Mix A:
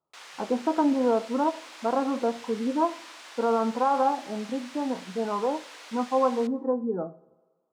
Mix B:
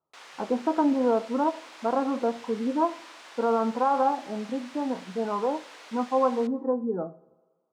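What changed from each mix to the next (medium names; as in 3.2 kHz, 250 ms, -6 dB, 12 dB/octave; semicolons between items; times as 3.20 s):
background: add tilt EQ -1.5 dB/octave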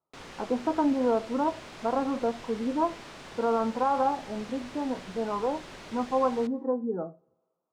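speech: send -10.5 dB; background: remove high-pass 790 Hz 12 dB/octave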